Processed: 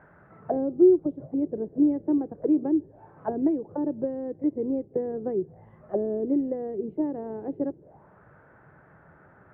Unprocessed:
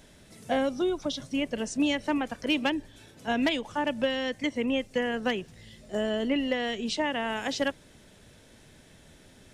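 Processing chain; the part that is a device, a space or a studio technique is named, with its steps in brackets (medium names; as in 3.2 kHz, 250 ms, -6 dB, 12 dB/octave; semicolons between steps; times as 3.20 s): envelope filter bass rig (touch-sensitive low-pass 360–1500 Hz down, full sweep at -28.5 dBFS; cabinet simulation 81–2000 Hz, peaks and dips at 150 Hz +5 dB, 240 Hz -9 dB, 800 Hz +4 dB)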